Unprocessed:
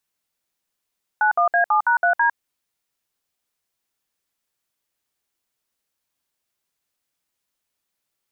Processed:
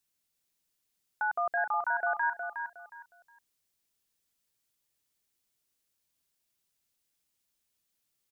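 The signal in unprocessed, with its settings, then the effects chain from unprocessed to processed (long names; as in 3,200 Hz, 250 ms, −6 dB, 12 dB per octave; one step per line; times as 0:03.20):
touch tones "91A7#3D", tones 104 ms, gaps 60 ms, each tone −17 dBFS
parametric band 1,000 Hz −7.5 dB 2.8 octaves
brickwall limiter −23 dBFS
on a send: repeating echo 363 ms, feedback 25%, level −7 dB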